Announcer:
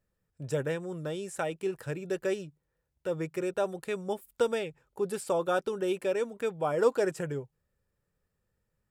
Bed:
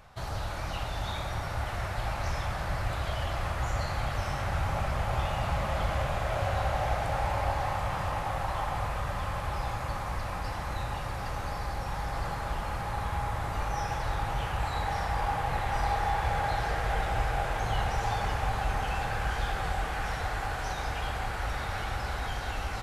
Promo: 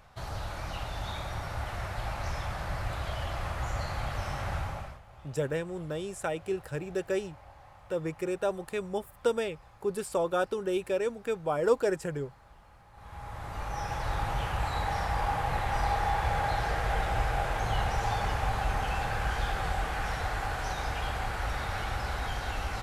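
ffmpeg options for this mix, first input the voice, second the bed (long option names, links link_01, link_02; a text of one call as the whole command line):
ffmpeg -i stem1.wav -i stem2.wav -filter_complex "[0:a]adelay=4850,volume=0dB[link_01];[1:a]volume=20.5dB,afade=type=out:start_time=4.53:duration=0.47:silence=0.0944061,afade=type=in:start_time=12.93:duration=1.26:silence=0.0707946[link_02];[link_01][link_02]amix=inputs=2:normalize=0" out.wav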